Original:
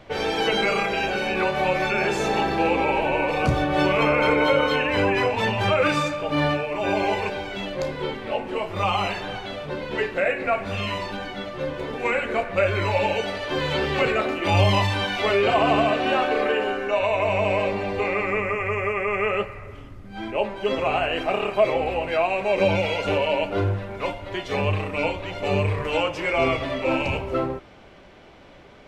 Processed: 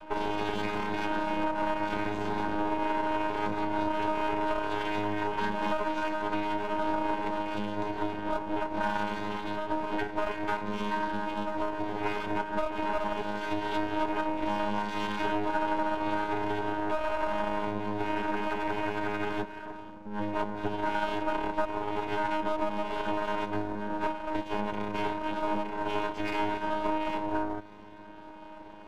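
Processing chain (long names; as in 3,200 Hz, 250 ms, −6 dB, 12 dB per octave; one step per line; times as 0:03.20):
channel vocoder with a chord as carrier bare fifth, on G#3
downward compressor, threshold −30 dBFS, peak gain reduction 16 dB
half-wave rectification
hollow resonant body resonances 960/1,500 Hz, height 11 dB, ringing for 30 ms
level +4.5 dB
MP3 112 kbit/s 48,000 Hz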